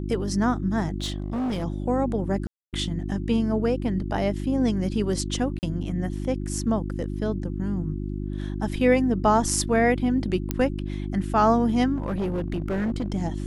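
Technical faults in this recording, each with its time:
hum 50 Hz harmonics 7 -30 dBFS
1–1.65 clipped -24 dBFS
2.47–2.73 gap 0.258 s
5.59–5.63 gap 39 ms
10.51 pop -10 dBFS
11.95–13.12 clipped -22.5 dBFS

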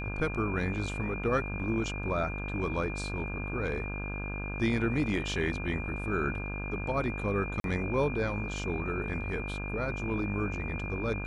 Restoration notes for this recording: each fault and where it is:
buzz 50 Hz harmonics 33 -37 dBFS
tone 2400 Hz -39 dBFS
7.6–7.64 gap 42 ms

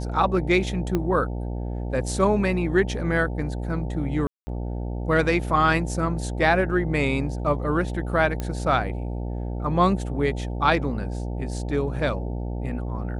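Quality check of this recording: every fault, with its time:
buzz 60 Hz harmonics 15 -29 dBFS
0.95 pop -12 dBFS
4.27–4.47 gap 0.2 s
8.4 pop -15 dBFS

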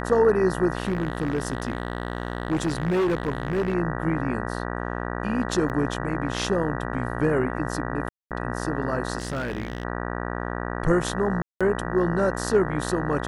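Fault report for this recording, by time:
buzz 60 Hz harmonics 32 -30 dBFS
0.8–3.75 clipped -19.5 dBFS
5.69–5.7 gap 8.8 ms
8.09–8.31 gap 0.218 s
9.18–9.85 clipped -24 dBFS
11.42–11.61 gap 0.186 s

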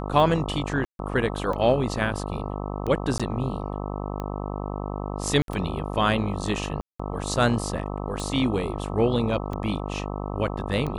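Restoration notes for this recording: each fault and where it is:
buzz 50 Hz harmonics 26 -31 dBFS
tick 45 rpm
0.85–0.99 gap 0.142 s
3.18–3.2 gap 16 ms
5.42–5.48 gap 62 ms
6.81–7 gap 0.185 s

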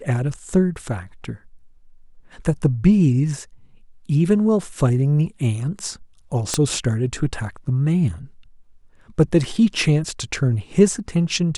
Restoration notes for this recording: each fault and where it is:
6.54 pop -6 dBFS

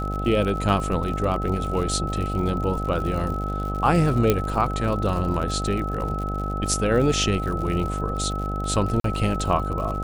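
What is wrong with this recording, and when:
buzz 50 Hz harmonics 16 -28 dBFS
crackle 68/s -30 dBFS
tone 1300 Hz -30 dBFS
4.3 pop -5 dBFS
9–9.04 gap 43 ms

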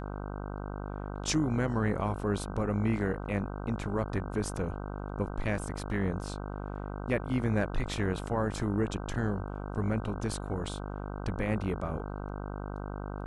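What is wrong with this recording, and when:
buzz 50 Hz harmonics 31 -38 dBFS

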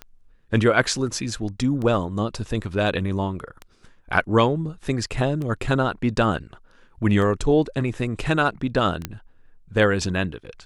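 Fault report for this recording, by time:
tick 33 1/3 rpm -20 dBFS
9.05 pop -11 dBFS

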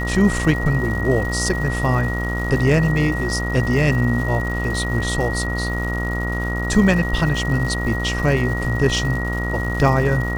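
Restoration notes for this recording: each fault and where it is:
buzz 60 Hz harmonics 24 -24 dBFS
crackle 320/s -29 dBFS
tone 1900 Hz -26 dBFS

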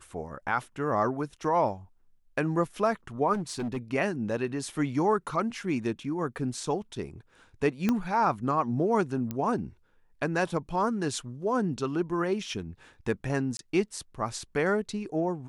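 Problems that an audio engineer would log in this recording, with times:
3.33–3.78 clipped -28 dBFS
7.89 pop -13 dBFS
9.31 pop -19 dBFS
13.57–13.59 gap 22 ms

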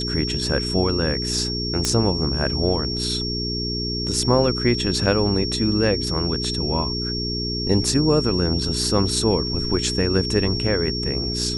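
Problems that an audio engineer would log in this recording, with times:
hum 60 Hz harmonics 7 -28 dBFS
tone 5500 Hz -26 dBFS
1.85 pop -5 dBFS

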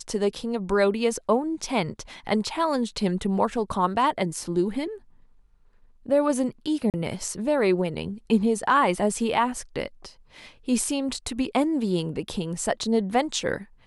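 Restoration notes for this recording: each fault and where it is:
6.9–6.94 gap 38 ms

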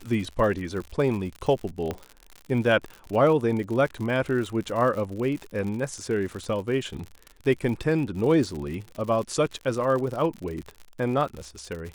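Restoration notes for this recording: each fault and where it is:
crackle 77/s -32 dBFS
1.91 pop -16 dBFS

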